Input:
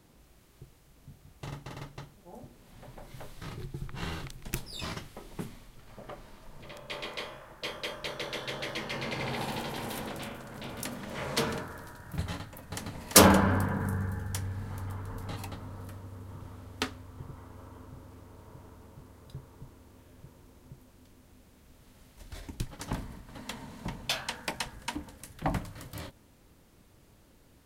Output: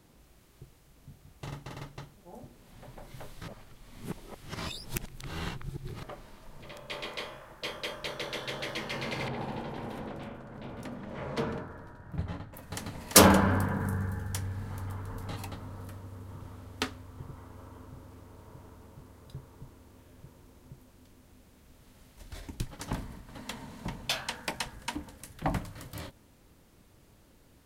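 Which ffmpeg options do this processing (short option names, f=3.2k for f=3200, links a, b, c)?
-filter_complex "[0:a]asettb=1/sr,asplit=3[a][b][c];[a]atrim=end=9.284[d];[b]atrim=start=9.28:end=12.54,asetpts=PTS-STARTPTS,afade=t=in:d=0.004:c=qsin,afade=t=out:st=3.256:d=0.004:c=qsin,lowpass=f=1k:p=1[e];[c]atrim=start=12.536[f];[d][e]acrossfade=d=0.004:c1=hsin:c2=qsin[g];[g][f]acrossfade=d=0.004:c1=qsin:c2=hsin,asplit=3[h][i][j];[h]atrim=end=3.482[k];[i]atrim=start=3.478:end=6.032,asetpts=PTS-STARTPTS,areverse[l];[j]atrim=start=6.028[m];[k][l]acrossfade=d=0.004:c1=hsin:c2=hsin[n];[n][m]acrossfade=d=0.004:c1=hsin:c2=hsin"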